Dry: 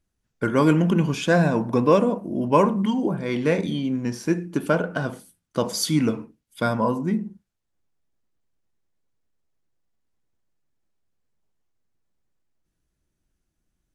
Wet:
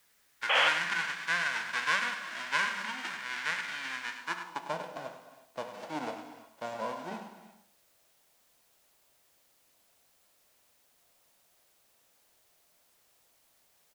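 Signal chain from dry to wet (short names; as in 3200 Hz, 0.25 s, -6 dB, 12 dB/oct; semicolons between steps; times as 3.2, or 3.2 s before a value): spectral whitening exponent 0.1; LPF 7600 Hz 12 dB/oct; non-linear reverb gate 0.39 s flat, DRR 10.5 dB; in parallel at -11 dB: requantised 8-bit, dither triangular; on the sum: band-pass sweep 1700 Hz -> 630 Hz, 4.13–4.81; painted sound noise, 0.49–0.69, 460–3400 Hz -21 dBFS; on a send: echo 0.101 s -10.5 dB; on the sum: added noise white -64 dBFS; gain -4.5 dB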